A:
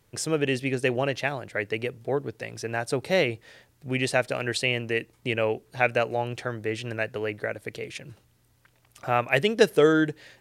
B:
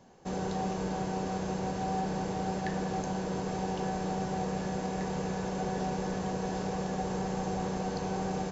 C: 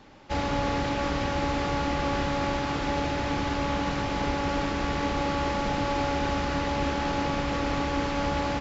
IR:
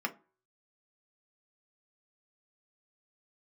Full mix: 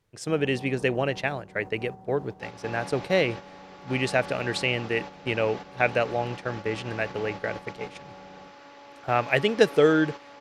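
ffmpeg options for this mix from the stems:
-filter_complex "[0:a]highshelf=frequency=9100:gain=-11,volume=0dB[link_01];[1:a]afwtdn=0.01,volume=-10dB[link_02];[2:a]highpass=390,bandreject=frequency=6800:width=15,adelay=2100,volume=-10dB[link_03];[link_01][link_02][link_03]amix=inputs=3:normalize=0,agate=range=-8dB:threshold=-33dB:ratio=16:detection=peak"

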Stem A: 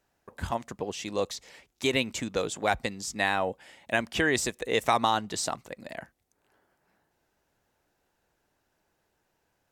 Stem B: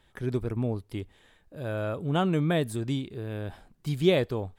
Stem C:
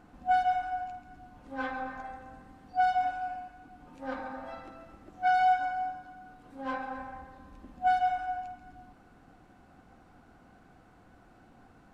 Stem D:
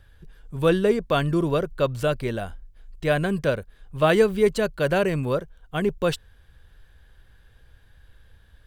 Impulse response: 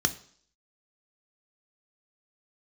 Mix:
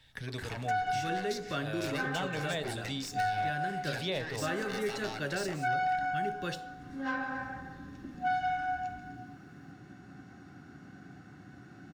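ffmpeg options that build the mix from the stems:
-filter_complex "[0:a]acompressor=threshold=-27dB:ratio=6,aeval=exprs='0.0422*(abs(mod(val(0)/0.0422+3,4)-2)-1)':channel_layout=same,aeval=exprs='(tanh(44.7*val(0)+0.5)-tanh(0.5))/44.7':channel_layout=same,volume=1dB,asplit=3[link_01][link_02][link_03];[link_02]volume=-12dB[link_04];[link_03]volume=-16dB[link_05];[1:a]equalizer=frequency=4100:width_type=o:width=1.6:gain=9.5,volume=-2.5dB,asplit=2[link_06][link_07];[link_07]volume=-15dB[link_08];[2:a]highpass=frequency=100:width=0.5412,highpass=frequency=100:width=1.3066,adelay=400,volume=-0.5dB,asplit=2[link_09][link_10];[link_10]volume=-3.5dB[link_11];[3:a]adelay=400,volume=-13dB,asplit=2[link_12][link_13];[link_13]volume=-4dB[link_14];[4:a]atrim=start_sample=2205[link_15];[link_04][link_08][link_11][link_14]amix=inputs=4:normalize=0[link_16];[link_16][link_15]afir=irnorm=-1:irlink=0[link_17];[link_05]aecho=0:1:181:1[link_18];[link_01][link_06][link_09][link_12][link_17][link_18]amix=inputs=6:normalize=0,acrossover=split=330|1400[link_19][link_20][link_21];[link_19]acompressor=threshold=-44dB:ratio=4[link_22];[link_20]acompressor=threshold=-33dB:ratio=4[link_23];[link_21]acompressor=threshold=-39dB:ratio=4[link_24];[link_22][link_23][link_24]amix=inputs=3:normalize=0"

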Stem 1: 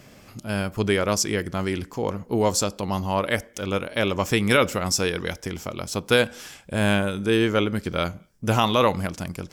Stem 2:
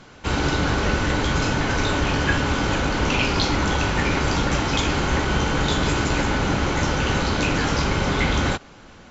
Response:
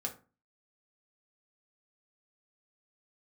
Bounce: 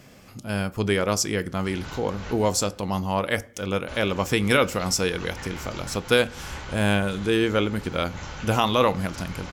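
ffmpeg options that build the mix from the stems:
-filter_complex "[0:a]volume=-3dB,asplit=3[link_01][link_02][link_03];[link_02]volume=-9.5dB[link_04];[1:a]equalizer=frequency=290:width_type=o:width=1.8:gain=-9,adelay=1400,volume=-12.5dB,asplit=3[link_05][link_06][link_07];[link_05]atrim=end=2.5,asetpts=PTS-STARTPTS,afade=type=out:start_time=2.496:duration=0.004:curve=hsin[link_08];[link_06]atrim=start=2.5:end=3.88,asetpts=PTS-STARTPTS,volume=0[link_09];[link_07]atrim=start=3.88,asetpts=PTS-STARTPTS,afade=type=in:duration=0.004:curve=hsin[link_10];[link_08][link_09][link_10]concat=n=3:v=0:a=1,asplit=2[link_11][link_12];[link_12]volume=-15dB[link_13];[link_03]apad=whole_len=463064[link_14];[link_11][link_14]sidechaincompress=threshold=-32dB:ratio=8:attack=16:release=208[link_15];[2:a]atrim=start_sample=2205[link_16];[link_04][link_16]afir=irnorm=-1:irlink=0[link_17];[link_13]aecho=0:1:211|422|633|844|1055|1266|1477:1|0.49|0.24|0.118|0.0576|0.0282|0.0138[link_18];[link_01][link_15][link_17][link_18]amix=inputs=4:normalize=0"

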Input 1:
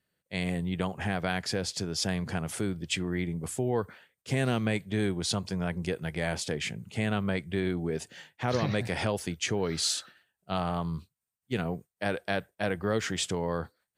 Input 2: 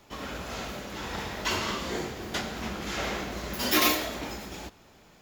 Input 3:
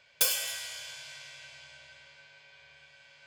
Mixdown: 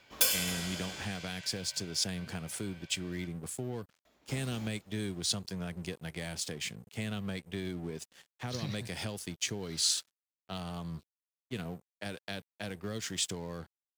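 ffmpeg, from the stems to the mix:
ffmpeg -i stem1.wav -i stem2.wav -i stem3.wav -filter_complex "[0:a]acrossover=split=270|3000[link_01][link_02][link_03];[link_02]acompressor=threshold=-36dB:ratio=6[link_04];[link_01][link_04][link_03]amix=inputs=3:normalize=0,aeval=exprs='sgn(val(0))*max(abs(val(0))-0.00422,0)':channel_layout=same,adynamicequalizer=threshold=0.00355:dfrequency=2600:dqfactor=0.7:tfrequency=2600:tqfactor=0.7:attack=5:release=100:ratio=0.375:range=3:mode=boostabove:tftype=highshelf,volume=-4.5dB,asplit=2[link_05][link_06];[1:a]acontrast=59,volume=-17dB,asplit=3[link_07][link_08][link_09];[link_07]atrim=end=1.05,asetpts=PTS-STARTPTS,afade=type=out:start_time=1.046:duration=0.004:curve=hsin[link_10];[link_08]atrim=start=1.05:end=4.05,asetpts=PTS-STARTPTS,volume=0[link_11];[link_09]atrim=start=4.05,asetpts=PTS-STARTPTS,afade=type=in:duration=0.004:curve=hsin[link_12];[link_10][link_11][link_12]concat=n=3:v=0:a=1[link_13];[2:a]volume=-0.5dB[link_14];[link_06]apad=whole_len=230054[link_15];[link_13][link_15]sidechaingate=range=-23dB:threshold=-49dB:ratio=16:detection=peak[link_16];[link_05][link_16][link_14]amix=inputs=3:normalize=0,lowshelf=frequency=66:gain=-5" out.wav

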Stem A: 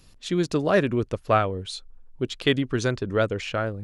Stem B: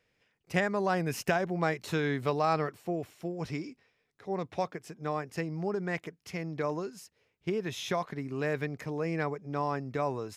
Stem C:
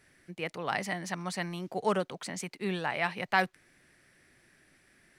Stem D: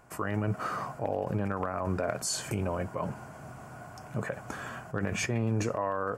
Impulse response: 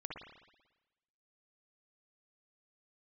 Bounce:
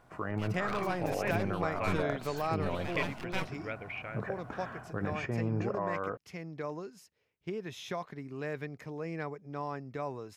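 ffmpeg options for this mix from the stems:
-filter_complex "[0:a]lowpass=frequency=2300:width_type=q:width=9.1,adelay=500,volume=-19.5dB[link_01];[1:a]equalizer=frequency=9900:width=0.64:gain=-3,volume=-6dB[link_02];[2:a]bandreject=frequency=1900:width=12,aeval=exprs='abs(val(0))':channel_layout=same,volume=-8dB[link_03];[3:a]lowpass=2300,volume=-3.5dB[link_04];[link_01][link_02][link_03][link_04]amix=inputs=4:normalize=0"

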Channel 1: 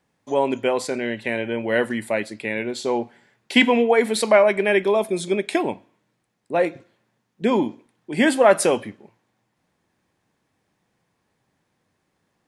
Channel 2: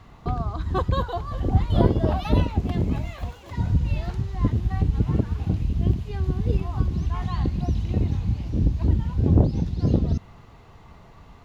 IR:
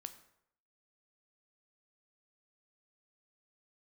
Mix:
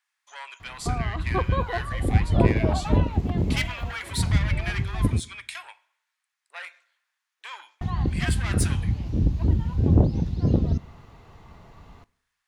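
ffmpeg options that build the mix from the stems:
-filter_complex "[0:a]asoftclip=type=tanh:threshold=-16.5dB,highpass=frequency=1200:width=0.5412,highpass=frequency=1200:width=1.3066,volume=-6dB,asplit=2[link_01][link_02];[link_02]volume=-5dB[link_03];[1:a]acrossover=split=2600[link_04][link_05];[link_05]acompressor=threshold=-51dB:ratio=4:attack=1:release=60[link_06];[link_04][link_06]amix=inputs=2:normalize=0,adelay=600,volume=-3dB,asplit=3[link_07][link_08][link_09];[link_07]atrim=end=5.2,asetpts=PTS-STARTPTS,afade=type=out:start_time=5.196:duration=0.004:curve=hsin[link_10];[link_08]atrim=start=5.2:end=7.81,asetpts=PTS-STARTPTS,volume=0[link_11];[link_09]atrim=start=7.81,asetpts=PTS-STARTPTS,afade=type=in:duration=0.004:curve=hsin[link_12];[link_10][link_11][link_12]concat=n=3:v=0:a=1,asplit=2[link_13][link_14];[link_14]volume=-4.5dB[link_15];[2:a]atrim=start_sample=2205[link_16];[link_03][link_15]amix=inputs=2:normalize=0[link_17];[link_17][link_16]afir=irnorm=-1:irlink=0[link_18];[link_01][link_13][link_18]amix=inputs=3:normalize=0"

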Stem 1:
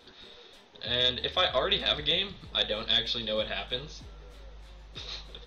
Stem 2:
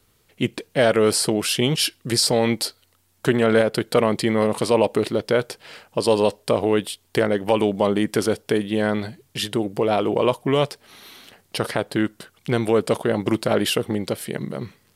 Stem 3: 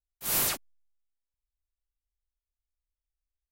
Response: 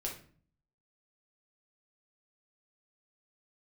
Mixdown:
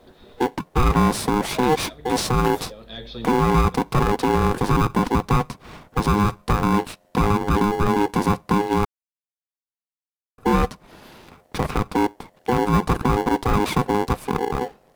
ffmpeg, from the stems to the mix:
-filter_complex "[0:a]acrusher=bits=9:mix=0:aa=0.000001,volume=-1dB[link_01];[1:a]aeval=exprs='val(0)*sgn(sin(2*PI*620*n/s))':channel_layout=same,volume=0dB,asplit=3[link_02][link_03][link_04];[link_02]atrim=end=8.85,asetpts=PTS-STARTPTS,afade=type=out:start_time=8.846:duration=0.004:curve=hsin[link_05];[link_03]atrim=start=8.85:end=10.38,asetpts=PTS-STARTPTS,volume=0[link_06];[link_04]atrim=start=10.38,asetpts=PTS-STARTPTS,afade=type=in:duration=0.004:curve=hsin[link_07];[link_05][link_06][link_07]concat=n=3:v=0:a=1,asplit=2[link_08][link_09];[2:a]adelay=2100,volume=-8.5dB[link_10];[link_09]apad=whole_len=240798[link_11];[link_01][link_11]sidechaincompress=threshold=-34dB:ratio=8:attack=31:release=521[link_12];[link_12][link_08][link_10]amix=inputs=3:normalize=0,tiltshelf=frequency=1400:gain=9,alimiter=limit=-9dB:level=0:latency=1:release=12"

